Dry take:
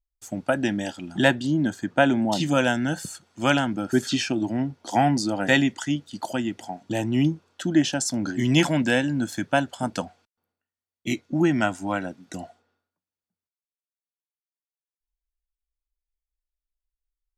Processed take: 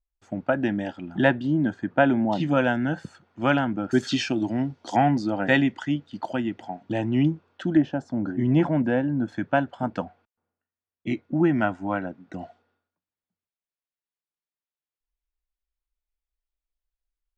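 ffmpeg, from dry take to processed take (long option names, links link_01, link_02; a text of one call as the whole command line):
ffmpeg -i in.wav -af "asetnsamples=nb_out_samples=441:pad=0,asendcmd='3.91 lowpass f 5300;4.96 lowpass f 2600;7.77 lowpass f 1100;9.28 lowpass f 1900;12.41 lowpass f 3600',lowpass=2100" out.wav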